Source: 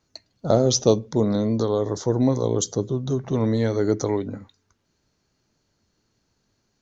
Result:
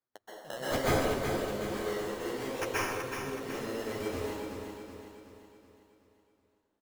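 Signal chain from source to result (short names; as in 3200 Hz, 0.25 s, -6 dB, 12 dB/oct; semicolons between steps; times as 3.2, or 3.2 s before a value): Wiener smoothing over 25 samples; LPF 4600 Hz 12 dB/oct; differentiator; in parallel at +1.5 dB: compressor, threshold -49 dBFS, peak gain reduction 21.5 dB; on the sum: decimation with a swept rate 15×, swing 60% 0.63 Hz; flange 0.81 Hz, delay 7.2 ms, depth 8.2 ms, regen +17%; feedback echo 0.374 s, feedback 49%, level -7 dB; plate-style reverb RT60 1.4 s, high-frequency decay 0.7×, pre-delay 0.115 s, DRR -9.5 dB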